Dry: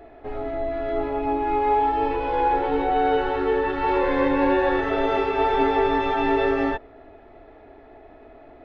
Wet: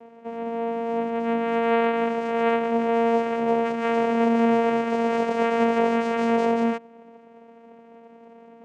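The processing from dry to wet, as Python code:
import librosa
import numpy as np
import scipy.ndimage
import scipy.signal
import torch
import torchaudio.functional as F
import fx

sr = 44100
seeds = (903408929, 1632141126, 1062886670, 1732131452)

y = fx.vocoder(x, sr, bands=4, carrier='saw', carrier_hz=231.0)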